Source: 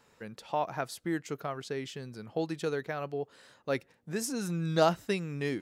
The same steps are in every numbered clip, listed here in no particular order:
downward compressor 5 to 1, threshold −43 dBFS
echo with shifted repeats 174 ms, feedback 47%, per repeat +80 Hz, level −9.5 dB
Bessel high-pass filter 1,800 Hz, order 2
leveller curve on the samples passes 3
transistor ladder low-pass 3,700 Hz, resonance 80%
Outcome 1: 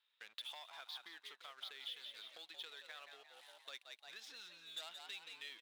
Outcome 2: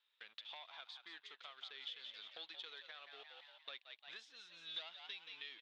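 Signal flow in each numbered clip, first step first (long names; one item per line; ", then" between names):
transistor ladder low-pass, then leveller curve on the samples, then echo with shifted repeats, then downward compressor, then Bessel high-pass filter
leveller curve on the samples, then Bessel high-pass filter, then echo with shifted repeats, then downward compressor, then transistor ladder low-pass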